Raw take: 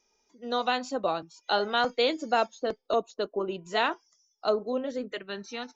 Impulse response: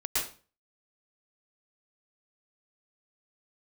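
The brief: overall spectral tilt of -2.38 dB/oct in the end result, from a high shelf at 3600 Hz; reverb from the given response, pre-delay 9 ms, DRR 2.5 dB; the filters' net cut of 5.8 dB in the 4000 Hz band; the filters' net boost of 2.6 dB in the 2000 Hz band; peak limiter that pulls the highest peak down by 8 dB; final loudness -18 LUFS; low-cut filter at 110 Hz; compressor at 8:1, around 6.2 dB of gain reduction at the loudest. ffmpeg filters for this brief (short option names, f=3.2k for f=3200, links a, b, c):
-filter_complex "[0:a]highpass=110,equalizer=f=2k:t=o:g=7,highshelf=f=3.6k:g=-7.5,equalizer=f=4k:t=o:g=-5.5,acompressor=threshold=-26dB:ratio=8,alimiter=limit=-24dB:level=0:latency=1,asplit=2[a][b];[1:a]atrim=start_sample=2205,adelay=9[c];[b][c]afir=irnorm=-1:irlink=0,volume=-10dB[d];[a][d]amix=inputs=2:normalize=0,volume=16.5dB"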